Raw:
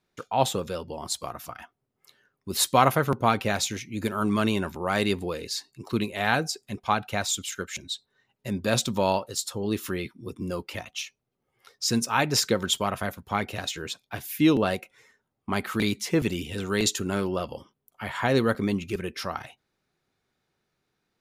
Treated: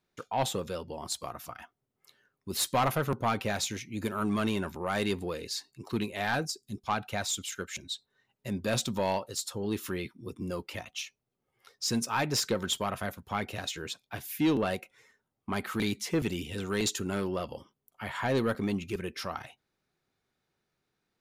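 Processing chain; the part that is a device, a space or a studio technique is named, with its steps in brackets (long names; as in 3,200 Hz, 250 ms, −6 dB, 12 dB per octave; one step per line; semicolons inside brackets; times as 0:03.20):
0:06.45–0:06.87: flat-topped bell 1,200 Hz −16 dB 2.8 octaves
saturation between pre-emphasis and de-emphasis (high-shelf EQ 12,000 Hz +10.5 dB; soft clipping −16 dBFS, distortion −14 dB; high-shelf EQ 12,000 Hz −10.5 dB)
level −3.5 dB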